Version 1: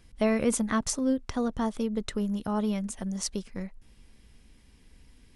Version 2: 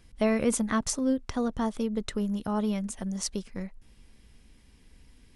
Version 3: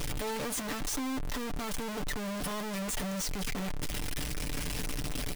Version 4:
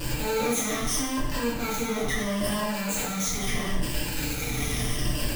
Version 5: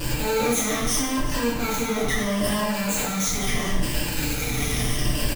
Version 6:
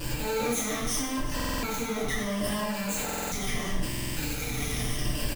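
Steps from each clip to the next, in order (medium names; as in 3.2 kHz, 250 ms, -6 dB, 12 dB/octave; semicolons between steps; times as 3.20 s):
no audible change
one-bit comparator; comb 6.8 ms, depth 48%; trim -3.5 dB
drifting ripple filter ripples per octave 1.3, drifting -0.76 Hz, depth 10 dB; plate-style reverb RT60 0.8 s, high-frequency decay 0.9×, DRR -7 dB; trim -1.5 dB
delay 385 ms -15 dB; trim +3.5 dB
buffer glitch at 1.35/3.04/3.89 s, samples 2048, times 5; trim -6 dB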